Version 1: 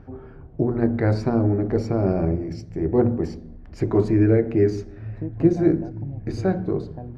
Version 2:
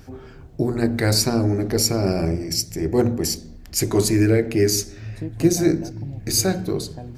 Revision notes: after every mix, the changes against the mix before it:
master: remove low-pass filter 1,300 Hz 12 dB per octave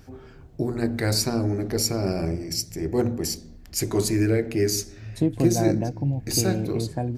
first voice −4.5 dB
second voice +9.5 dB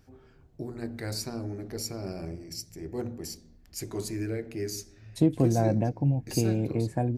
first voice −11.0 dB

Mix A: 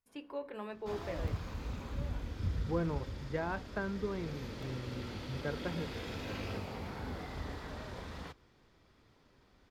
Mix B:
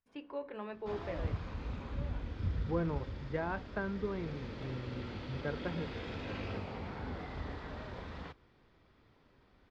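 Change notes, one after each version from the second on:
master: add low-pass filter 3,700 Hz 12 dB per octave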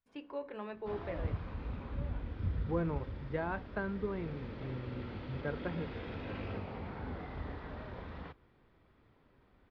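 background: add high-frequency loss of the air 220 metres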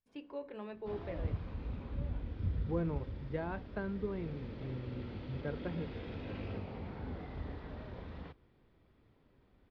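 master: add parametric band 1,300 Hz −6 dB 1.9 octaves

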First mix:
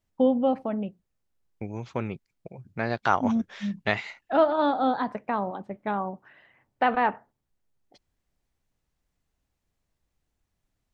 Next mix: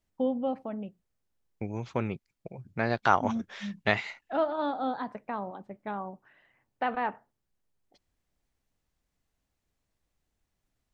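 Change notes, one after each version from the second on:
first voice −7.0 dB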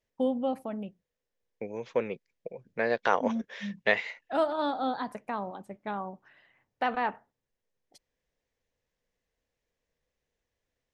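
first voice: remove high-frequency loss of the air 220 metres
second voice: add loudspeaker in its box 270–6,500 Hz, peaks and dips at 320 Hz −5 dB, 490 Hz +10 dB, 780 Hz −5 dB, 1,300 Hz −7 dB, 1,800 Hz +4 dB, 4,400 Hz −4 dB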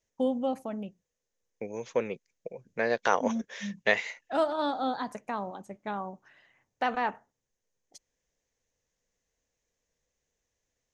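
master: add parametric band 6,500 Hz +13.5 dB 0.49 octaves

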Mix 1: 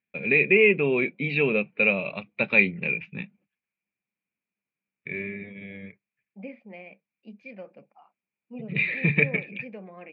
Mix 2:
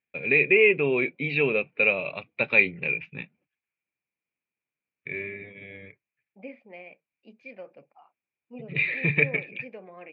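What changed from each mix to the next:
master: add parametric band 200 Hz −12 dB 0.36 octaves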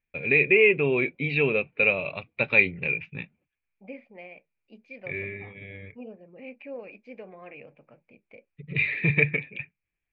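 second voice: entry −2.55 s
master: remove high-pass filter 150 Hz 12 dB per octave

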